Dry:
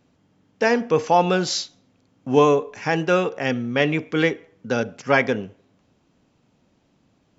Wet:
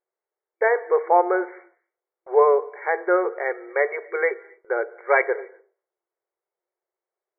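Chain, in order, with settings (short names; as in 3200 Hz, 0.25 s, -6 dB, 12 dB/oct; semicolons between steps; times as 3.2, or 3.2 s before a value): FFT band-pass 340–2300 Hz; gate with hold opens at -50 dBFS; on a send: reverb, pre-delay 3 ms, DRR 21 dB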